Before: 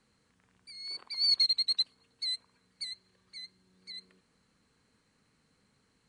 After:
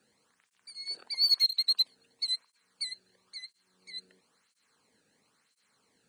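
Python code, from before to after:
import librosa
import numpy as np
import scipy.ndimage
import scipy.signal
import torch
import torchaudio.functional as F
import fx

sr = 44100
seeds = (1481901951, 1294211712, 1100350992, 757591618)

p1 = fx.high_shelf(x, sr, hz=9200.0, db=8.5)
p2 = np.clip(p1, -10.0 ** (-27.5 / 20.0), 10.0 ** (-27.5 / 20.0))
p3 = p1 + F.gain(torch.from_numpy(p2), -8.5).numpy()
p4 = fx.flanger_cancel(p3, sr, hz=0.99, depth_ms=1.0)
y = F.gain(torch.from_numpy(p4), 1.0).numpy()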